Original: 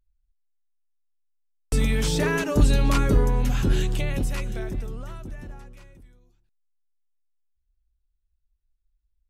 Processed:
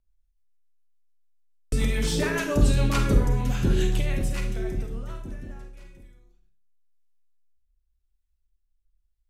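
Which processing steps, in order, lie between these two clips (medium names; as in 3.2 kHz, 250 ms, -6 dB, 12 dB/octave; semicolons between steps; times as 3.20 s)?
rotary cabinet horn 7 Hz, later 0.9 Hz, at 4.97 s; Schroeder reverb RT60 0.48 s, combs from 31 ms, DRR 4.5 dB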